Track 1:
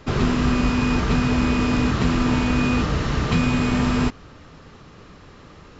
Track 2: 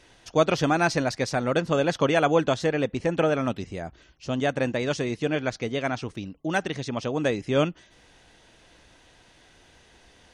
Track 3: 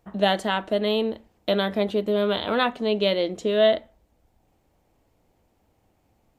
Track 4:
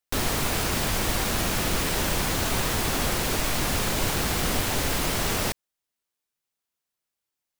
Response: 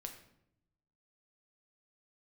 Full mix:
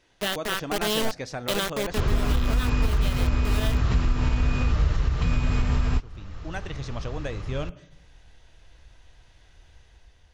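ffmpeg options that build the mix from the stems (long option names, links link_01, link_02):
-filter_complex "[0:a]adelay=1900,volume=-2dB[link_01];[1:a]volume=-10.5dB,asplit=2[link_02][link_03];[link_03]volume=-7.5dB[link_04];[2:a]firequalizer=gain_entry='entry(340,0);entry(780,-10);entry(1200,3)':delay=0.05:min_phase=1,acrusher=bits=3:mix=0:aa=0.000001,volume=-6dB[link_05];[link_02]equalizer=frequency=8800:width_type=o:width=0.25:gain=-8.5,acompressor=threshold=-36dB:ratio=3,volume=0dB[link_06];[4:a]atrim=start_sample=2205[link_07];[link_04][link_07]afir=irnorm=-1:irlink=0[link_08];[link_01][link_05][link_06][link_08]amix=inputs=4:normalize=0,asubboost=boost=8.5:cutoff=80,dynaudnorm=framelen=120:gausssize=9:maxgain=4dB,alimiter=limit=-13.5dB:level=0:latency=1:release=406"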